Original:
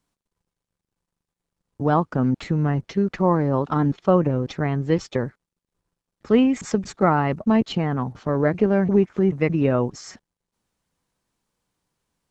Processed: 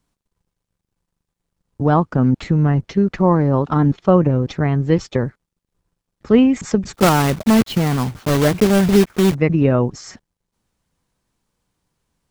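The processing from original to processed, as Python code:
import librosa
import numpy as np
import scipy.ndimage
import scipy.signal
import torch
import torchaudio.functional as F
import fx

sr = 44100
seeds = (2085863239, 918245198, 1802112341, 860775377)

y = fx.block_float(x, sr, bits=3, at=(6.93, 9.36))
y = fx.low_shelf(y, sr, hz=160.0, db=6.5)
y = y * 10.0 ** (3.0 / 20.0)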